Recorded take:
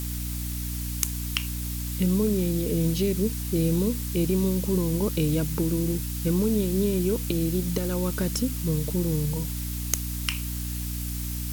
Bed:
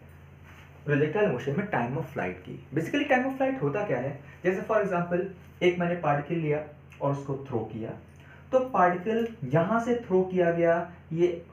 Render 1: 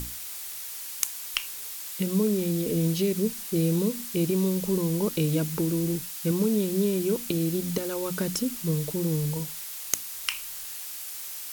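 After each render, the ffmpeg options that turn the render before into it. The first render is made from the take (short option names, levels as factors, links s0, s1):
-af "bandreject=f=60:t=h:w=6,bandreject=f=120:t=h:w=6,bandreject=f=180:t=h:w=6,bandreject=f=240:t=h:w=6,bandreject=f=300:t=h:w=6"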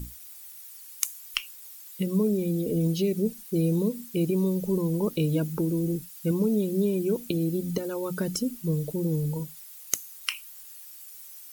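-af "afftdn=nr=14:nf=-38"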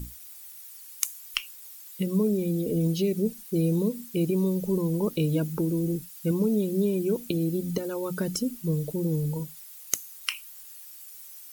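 -af anull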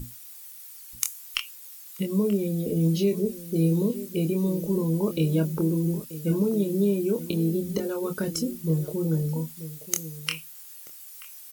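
-filter_complex "[0:a]asplit=2[s0][s1];[s1]adelay=25,volume=0.501[s2];[s0][s2]amix=inputs=2:normalize=0,asplit=2[s3][s4];[s4]adelay=932.9,volume=0.2,highshelf=f=4000:g=-21[s5];[s3][s5]amix=inputs=2:normalize=0"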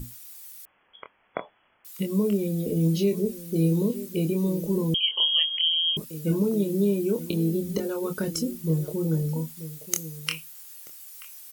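-filter_complex "[0:a]asettb=1/sr,asplit=3[s0][s1][s2];[s0]atrim=end=0.654[s3];[s1]atrim=start=0.65:end=1.85,asetpts=PTS-STARTPTS,afade=t=in:d=0.004:c=qsin,afade=t=out:st=1.196:d=0.004:c=qsin,lowpass=f=2900:t=q:w=0.5098,lowpass=f=2900:t=q:w=0.6013,lowpass=f=2900:t=q:w=0.9,lowpass=f=2900:t=q:w=2.563,afreqshift=-3400[s4];[s2]atrim=start=1.846[s5];[s3][s4]acrossfade=d=0.004:c1=hsin:c2=qsin[s6];[s6][s5]acrossfade=d=0.004:c1=qsin:c2=hsin,asettb=1/sr,asplit=3[s7][s8][s9];[s7]atrim=end=4.944[s10];[s8]atrim=start=4.94:end=5.97,asetpts=PTS-STARTPTS,afade=t=in:d=0.004:c=qsin,afade=t=out:st=1.026:d=0.004:c=qsin,lowpass=f=2900:t=q:w=0.5098,lowpass=f=2900:t=q:w=0.6013,lowpass=f=2900:t=q:w=0.9,lowpass=f=2900:t=q:w=2.563,afreqshift=-3400[s11];[s9]atrim=start=5.966[s12];[s10][s11]acrossfade=d=0.004:c1=hsin:c2=qsin[s13];[s13][s12]acrossfade=d=0.004:c1=qsin:c2=hsin"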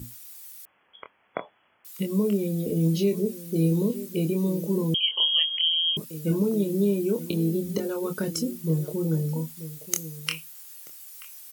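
-af "highpass=77"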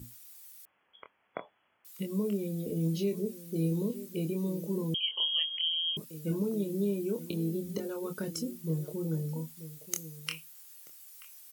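-af "volume=0.422"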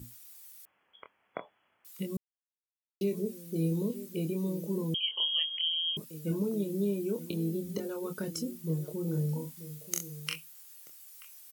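-filter_complex "[0:a]asplit=3[s0][s1][s2];[s0]afade=t=out:st=9.06:d=0.02[s3];[s1]asplit=2[s4][s5];[s5]adelay=40,volume=0.631[s6];[s4][s6]amix=inputs=2:normalize=0,afade=t=in:st=9.06:d=0.02,afade=t=out:st=10.34:d=0.02[s7];[s2]afade=t=in:st=10.34:d=0.02[s8];[s3][s7][s8]amix=inputs=3:normalize=0,asplit=3[s9][s10][s11];[s9]atrim=end=2.17,asetpts=PTS-STARTPTS,afade=t=out:st=2.166:d=0.004:c=hsin[s12];[s10]atrim=start=2.17:end=3.01,asetpts=PTS-STARTPTS,volume=0[s13];[s11]atrim=start=3.01,asetpts=PTS-STARTPTS,afade=t=in:d=0.004:c=hsin[s14];[s12][s13][s14]concat=n=3:v=0:a=1"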